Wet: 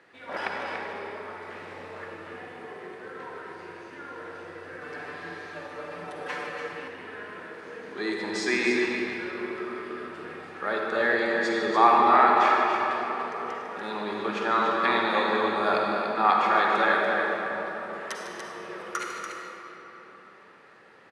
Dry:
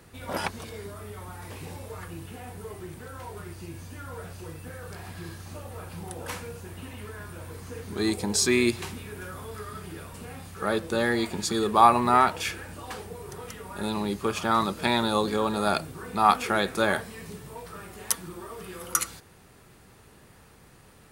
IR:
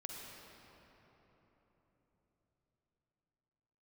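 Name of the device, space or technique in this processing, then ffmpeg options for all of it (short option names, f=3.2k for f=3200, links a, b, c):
station announcement: -filter_complex "[0:a]highpass=350,lowpass=3.6k,equalizer=f=1.8k:t=o:w=0.52:g=7.5,aecho=1:1:151.6|288.6:0.251|0.447[a];[1:a]atrim=start_sample=2205[b];[a][b]afir=irnorm=-1:irlink=0,asettb=1/sr,asplit=3[c][d][e];[c]atrim=end=4.814[f];[d]atrim=start=4.81:end=6.88,asetpts=PTS-STARTPTS,afade=t=in:d=0.004:c=qsin,afade=t=out:st=2.066:d=0.004:c=qsin,aecho=1:1:6.8:0.97,atrim=end_sample=91287[g];[e]atrim=start=6.876[h];[f][g]acrossfade=d=0.004:c1=hsin:c2=qsin[i];[i][h]acrossfade=d=0.004:c1=qsin:c2=hsin,volume=2.5dB"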